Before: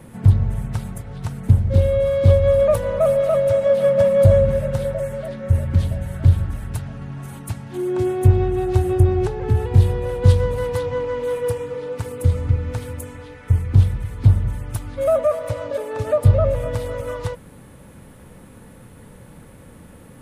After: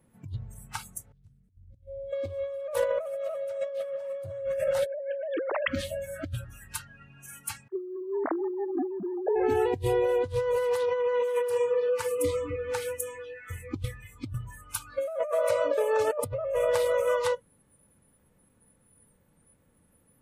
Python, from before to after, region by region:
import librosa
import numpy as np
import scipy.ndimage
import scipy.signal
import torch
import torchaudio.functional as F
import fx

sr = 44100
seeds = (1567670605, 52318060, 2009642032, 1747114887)

y = fx.chain(x, sr, fx.tone_stack(knobs='10-0-1'),
    fx.over_compress(threshold_db=-30.0, ratio=-0.5), at=(1.12, 2.13))
y = fx.chain(y, sr, fx.sine_speech(),
    fx.env_flatten(amount_pct=70), at=(4.86, 5.68))
y = fx.chain(y, sr, fx.sine_speech(),
    fx.lowpass(hz=1800.0, slope=24),
    fx.quant_float(bits=6), at=(7.68, 9.36))
y = fx.noise_reduce_blind(y, sr, reduce_db=26)
y = fx.hum_notches(y, sr, base_hz=60, count=2)
y = fx.over_compress(y, sr, threshold_db=-27.0, ratio=-1.0)
y = y * 10.0 ** (-3.0 / 20.0)